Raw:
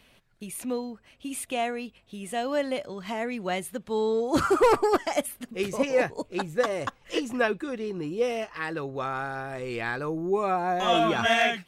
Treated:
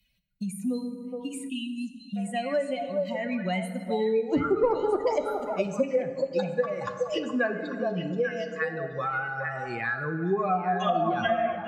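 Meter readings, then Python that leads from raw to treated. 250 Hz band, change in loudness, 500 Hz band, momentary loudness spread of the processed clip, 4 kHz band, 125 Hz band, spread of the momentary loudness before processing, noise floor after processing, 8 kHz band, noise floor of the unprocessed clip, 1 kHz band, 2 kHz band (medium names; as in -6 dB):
+0.5 dB, -1.0 dB, -0.5 dB, 9 LU, -7.0 dB, +3.0 dB, 12 LU, -43 dBFS, no reading, -61 dBFS, -1.5 dB, -1.5 dB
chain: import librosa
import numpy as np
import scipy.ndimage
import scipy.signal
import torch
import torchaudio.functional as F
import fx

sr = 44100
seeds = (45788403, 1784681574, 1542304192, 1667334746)

y = fx.bin_expand(x, sr, power=2.0)
y = fx.env_lowpass_down(y, sr, base_hz=770.0, full_db=-22.0)
y = fx.echo_stepped(y, sr, ms=420, hz=700.0, octaves=1.4, feedback_pct=70, wet_db=-3)
y = fx.rev_fdn(y, sr, rt60_s=1.5, lf_ratio=1.25, hf_ratio=0.55, size_ms=33.0, drr_db=7.0)
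y = fx.spec_erase(y, sr, start_s=1.49, length_s=0.67, low_hz=380.0, high_hz=2600.0)
y = fx.band_squash(y, sr, depth_pct=70)
y = F.gain(torch.from_numpy(y), 3.0).numpy()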